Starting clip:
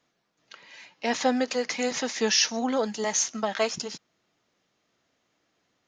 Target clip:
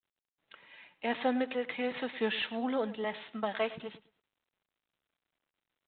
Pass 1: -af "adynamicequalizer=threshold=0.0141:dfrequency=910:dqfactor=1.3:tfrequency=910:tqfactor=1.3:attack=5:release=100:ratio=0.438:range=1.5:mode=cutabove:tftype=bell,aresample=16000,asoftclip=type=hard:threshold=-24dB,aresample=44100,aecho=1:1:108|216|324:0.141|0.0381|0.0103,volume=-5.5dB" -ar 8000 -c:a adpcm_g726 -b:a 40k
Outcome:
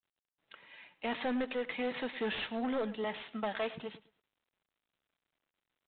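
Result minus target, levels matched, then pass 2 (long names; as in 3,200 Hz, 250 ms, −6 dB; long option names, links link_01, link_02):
hard clipping: distortion +21 dB
-af "adynamicequalizer=threshold=0.0141:dfrequency=910:dqfactor=1.3:tfrequency=910:tqfactor=1.3:attack=5:release=100:ratio=0.438:range=1.5:mode=cutabove:tftype=bell,aresample=16000,asoftclip=type=hard:threshold=-13.5dB,aresample=44100,aecho=1:1:108|216|324:0.141|0.0381|0.0103,volume=-5.5dB" -ar 8000 -c:a adpcm_g726 -b:a 40k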